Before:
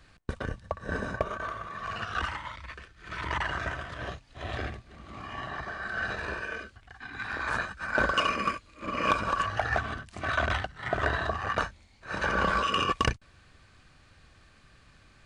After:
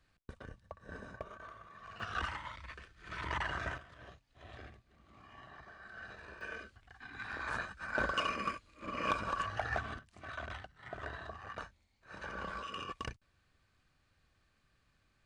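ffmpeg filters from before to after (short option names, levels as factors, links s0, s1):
-af "asetnsamples=n=441:p=0,asendcmd='2 volume volume -6dB;3.78 volume volume -17dB;6.41 volume volume -8dB;9.99 volume volume -16dB',volume=0.168"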